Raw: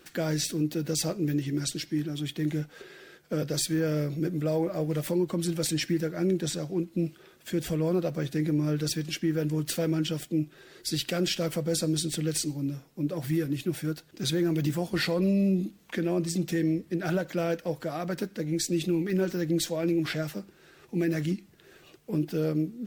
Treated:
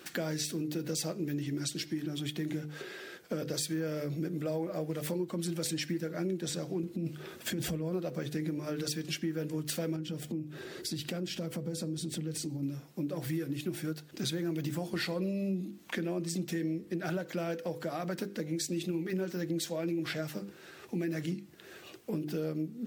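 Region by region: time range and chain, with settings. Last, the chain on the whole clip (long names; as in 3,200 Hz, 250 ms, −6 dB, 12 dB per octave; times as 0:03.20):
0:06.83–0:07.93: low-shelf EQ 320 Hz +6 dB + compressor whose output falls as the input rises −28 dBFS
0:09.96–0:12.63: low-shelf EQ 490 Hz +10 dB + downward compressor 2 to 1, threshold −41 dBFS
whole clip: high-pass filter 98 Hz; mains-hum notches 50/100/150/200/250/300/350/400/450/500 Hz; downward compressor 3 to 1, threshold −39 dBFS; level +4.5 dB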